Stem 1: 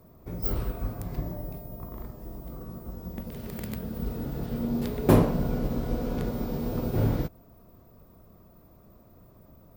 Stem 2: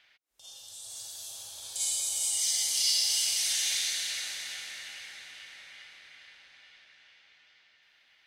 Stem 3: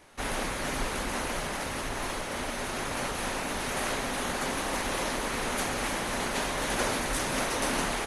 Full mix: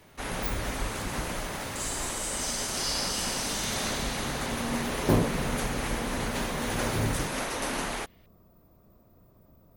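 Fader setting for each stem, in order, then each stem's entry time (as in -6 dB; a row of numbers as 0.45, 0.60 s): -4.5, -5.0, -2.5 dB; 0.00, 0.00, 0.00 s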